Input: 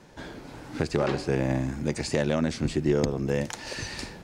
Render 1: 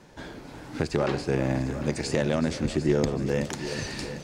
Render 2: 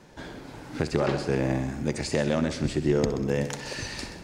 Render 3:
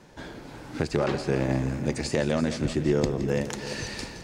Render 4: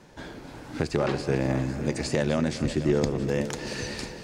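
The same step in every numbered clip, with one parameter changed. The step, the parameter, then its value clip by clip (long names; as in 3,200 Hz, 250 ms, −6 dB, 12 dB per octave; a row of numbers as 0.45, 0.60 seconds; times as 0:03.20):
echo machine with several playback heads, delay time: 375, 64, 168, 252 milliseconds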